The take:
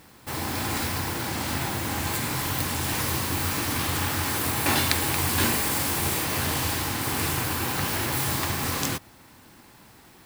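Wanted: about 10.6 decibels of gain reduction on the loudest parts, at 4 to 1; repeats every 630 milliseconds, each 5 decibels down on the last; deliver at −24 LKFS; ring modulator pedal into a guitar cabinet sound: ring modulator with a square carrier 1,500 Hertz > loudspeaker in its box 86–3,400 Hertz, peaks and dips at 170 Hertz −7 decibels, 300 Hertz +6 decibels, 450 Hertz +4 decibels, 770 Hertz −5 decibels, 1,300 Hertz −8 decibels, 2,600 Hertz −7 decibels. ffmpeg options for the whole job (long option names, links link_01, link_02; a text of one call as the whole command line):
ffmpeg -i in.wav -af "acompressor=threshold=-31dB:ratio=4,aecho=1:1:630|1260|1890|2520|3150|3780|4410:0.562|0.315|0.176|0.0988|0.0553|0.031|0.0173,aeval=exprs='val(0)*sgn(sin(2*PI*1500*n/s))':channel_layout=same,highpass=86,equalizer=frequency=170:width_type=q:width=4:gain=-7,equalizer=frequency=300:width_type=q:width=4:gain=6,equalizer=frequency=450:width_type=q:width=4:gain=4,equalizer=frequency=770:width_type=q:width=4:gain=-5,equalizer=frequency=1300:width_type=q:width=4:gain=-8,equalizer=frequency=2600:width_type=q:width=4:gain=-7,lowpass=frequency=3400:width=0.5412,lowpass=frequency=3400:width=1.3066,volume=12.5dB" out.wav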